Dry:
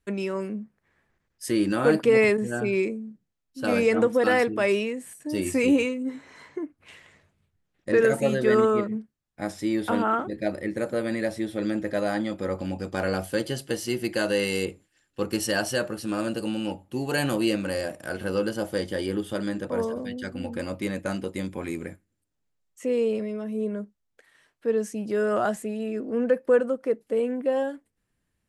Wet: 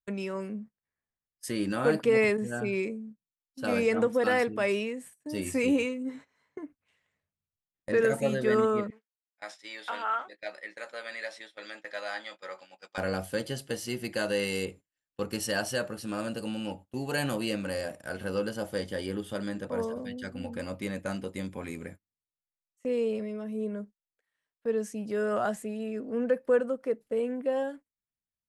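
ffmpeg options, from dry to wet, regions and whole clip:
-filter_complex "[0:a]asettb=1/sr,asplit=3[a][b][c];[a]atrim=end=8.904[d];[b]atrim=start=8.9:end=12.98,asetpts=PTS-STARTPTS,afade=t=in:d=0.004:c=qsin,afade=t=out:st=4.076:d=0.004:c=qsin,highpass=710,lowpass=5.2k,tiltshelf=f=1.3k:g=-5,asplit=2[e][f];[f]adelay=16,volume=-11dB[g];[e][g]amix=inputs=2:normalize=0,atrim=end_sample=179928[h];[c]atrim=start=12.976[i];[d][h]acrossfade=d=0.004:c1=hsin:c2=qsin[j];[j][i]acrossfade=d=0.004:c1=qsin:c2=hsin,agate=range=-20dB:threshold=-41dB:ratio=16:detection=peak,equalizer=f=340:w=7:g=-9,volume=-4dB"

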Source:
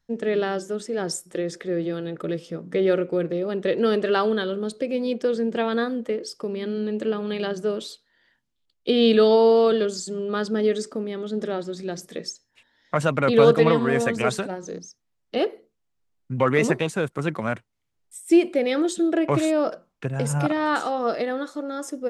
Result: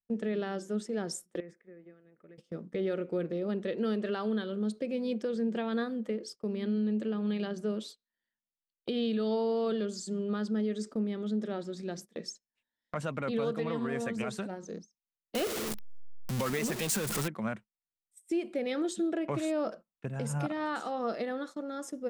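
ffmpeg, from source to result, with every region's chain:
-filter_complex "[0:a]asettb=1/sr,asplit=3[a][b][c];[a]atrim=end=1.404[d];[b]atrim=start=1.4:end=2.38,asetpts=PTS-STARTPTS,afade=t=in:d=0.004:c=qsin,afade=t=out:st=0.976:d=0.004:c=qsin,highshelf=f=2.8k:t=q:w=3:g=-8.5,acompressor=threshold=-36dB:ratio=8:attack=3.2:release=140:knee=1:detection=peak[e];[c]atrim=start=2.376[f];[d][e]acrossfade=d=0.004:c1=hsin:c2=qsin[g];[g][f]acrossfade=d=0.004:c1=qsin:c2=hsin,asettb=1/sr,asplit=3[h][i][j];[h]atrim=end=15.354[k];[i]atrim=start=15.35:end=17.28,asetpts=PTS-STARTPTS,afade=t=in:d=0.004:c=qsin,afade=t=out:st=1.926:d=0.004:c=qsin,aeval=exprs='val(0)+0.5*0.0841*sgn(val(0))':c=same,highshelf=f=3.4k:g=11[l];[j]atrim=start=17.276[m];[k][l]acrossfade=d=0.004:c1=hsin:c2=qsin[n];[n][m]acrossfade=d=0.004:c1=qsin:c2=hsin,agate=range=-19dB:threshold=-37dB:ratio=16:detection=peak,equalizer=f=210:w=6.7:g=10,alimiter=limit=-15.5dB:level=0:latency=1:release=264,volume=-8dB"

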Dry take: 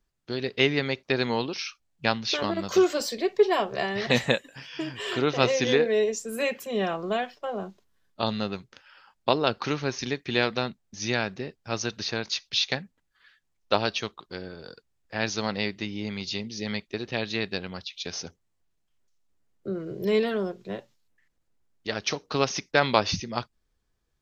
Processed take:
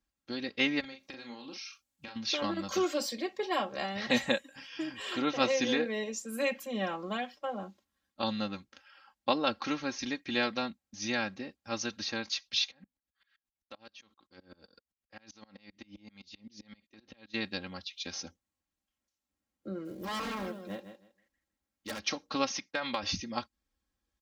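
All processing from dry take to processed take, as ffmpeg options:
-filter_complex "[0:a]asettb=1/sr,asplit=3[a][b][c];[a]atrim=end=0.804[d];[b]atrim=start=0.8:end=2.16,asetpts=PTS-STARTPTS,afade=t=in:d=0.004:c=qsin,afade=t=out:st=1.356:d=0.004:c=qsin,aemphasis=mode=production:type=cd,acompressor=threshold=-36dB:ratio=12:attack=3.2:release=140:knee=1:detection=peak,asplit=2[e][f];[f]adelay=38,volume=-5.5dB[g];[e][g]amix=inputs=2:normalize=0,atrim=end_sample=59976[h];[c]atrim=start=2.156[i];[d][h]acrossfade=d=0.004:c1=hsin:c2=qsin[j];[j][i]acrossfade=d=0.004:c1=qsin:c2=hsin,asettb=1/sr,asplit=3[k][l][m];[k]atrim=end=12.714[n];[l]atrim=start=12.71:end=17.34,asetpts=PTS-STARTPTS,afade=t=in:d=0.004:c=qsin,afade=t=out:st=4.626:d=0.004:c=qsin,acompressor=threshold=-34dB:ratio=16:attack=3.2:release=140:knee=1:detection=peak,aeval=exprs='val(0)*pow(10,-28*if(lt(mod(-7.7*n/s,1),2*abs(-7.7)/1000),1-mod(-7.7*n/s,1)/(2*abs(-7.7)/1000),(mod(-7.7*n/s,1)-2*abs(-7.7)/1000)/(1-2*abs(-7.7)/1000))/20)':c=same[o];[m]atrim=start=17.336[p];[n][o]acrossfade=d=0.004:c1=hsin:c2=qsin[q];[q][p]acrossfade=d=0.004:c1=qsin:c2=hsin,asettb=1/sr,asplit=3[r][s][t];[r]atrim=end=19.854[u];[s]atrim=start=19.85:end=22,asetpts=PTS-STARTPTS,afade=t=in:d=0.004:c=qsin,afade=t=out:st=2.146:d=0.004:c=qsin,aecho=1:1:159|318|477:0.316|0.0632|0.0126,atrim=end_sample=94815,aeval=exprs='0.0562*(abs(mod(val(0)/0.0562+3,4)-2)-1)':c=same,acrusher=bits=7:mode=log:mix=0:aa=0.000001[v];[t]atrim=start=21.996[w];[u][v]acrossfade=d=0.004:c1=hsin:c2=qsin[x];[x][w]acrossfade=d=0.004:c1=qsin:c2=hsin,asettb=1/sr,asplit=3[y][z][aa];[y]atrim=end=22.574[ab];[z]atrim=start=22.57:end=23.03,asetpts=PTS-STARTPTS,afade=t=in:d=0.004:c=qsin,afade=t=out:st=0.456:d=0.004:c=qsin,highpass=120,lowpass=5.3k,equalizer=f=320:t=o:w=1.9:g=-5,acompressor=threshold=-22dB:ratio=6:attack=3.2:release=140:knee=1:detection=peak[ac];[aa]atrim=start=23.026[ad];[ab][ac]acrossfade=d=0.004:c1=hsin:c2=qsin[ae];[ae][ad]acrossfade=d=0.004:c1=qsin:c2=hsin,highpass=52,equalizer=f=480:t=o:w=0.27:g=-5,aecho=1:1:3.7:0.75,volume=-6.5dB"

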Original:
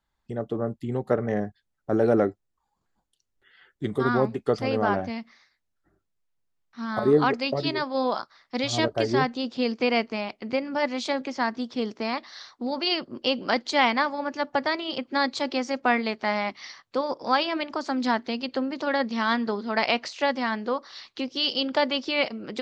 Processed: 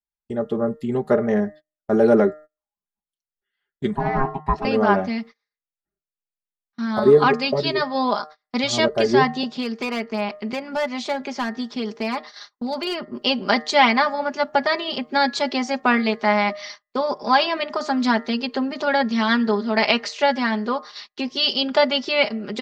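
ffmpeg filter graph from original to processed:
-filter_complex "[0:a]asettb=1/sr,asplit=3[a][b][c];[a]atrim=end=3.954[d];[b]atrim=start=3.95:end=4.65,asetpts=PTS-STARTPTS,afade=t=in:d=0.004:c=qsin,afade=t=out:st=0.696:d=0.004:c=qsin,lowpass=f=1.1k:p=1,aeval=exprs='val(0)*sin(2*PI*540*n/s)':c=same[e];[c]atrim=start=4.646[f];[d][e]acrossfade=d=0.004:c1=hsin:c2=qsin[g];[g][f]acrossfade=d=0.004:c1=qsin:c2=hsin,asettb=1/sr,asplit=3[h][i][j];[h]atrim=end=9.434[k];[i]atrim=start=9.43:end=13.21,asetpts=PTS-STARTPTS,afade=t=in:d=0.004:c=qsin,afade=t=out:st=3.776:d=0.004:c=qsin,acrossover=split=670|2000[l][m][n];[l]acompressor=threshold=-31dB:ratio=4[o];[m]acompressor=threshold=-31dB:ratio=4[p];[n]acompressor=threshold=-39dB:ratio=4[q];[o][p][q]amix=inputs=3:normalize=0,asoftclip=type=hard:threshold=-23dB[r];[j]atrim=start=13.206[s];[k][r]acrossfade=d=0.004:c1=hsin:c2=qsin[t];[t][s]acrossfade=d=0.004:c1=qsin:c2=hsin,aecho=1:1:4.9:0.67,bandreject=f=153:t=h:w=4,bandreject=f=306:t=h:w=4,bandreject=f=459:t=h:w=4,bandreject=f=612:t=h:w=4,bandreject=f=765:t=h:w=4,bandreject=f=918:t=h:w=4,bandreject=f=1.071k:t=h:w=4,bandreject=f=1.224k:t=h:w=4,bandreject=f=1.377k:t=h:w=4,bandreject=f=1.53k:t=h:w=4,bandreject=f=1.683k:t=h:w=4,bandreject=f=1.836k:t=h:w=4,bandreject=f=1.989k:t=h:w=4,bandreject=f=2.142k:t=h:w=4,agate=range=-28dB:threshold=-41dB:ratio=16:detection=peak,volume=4dB"

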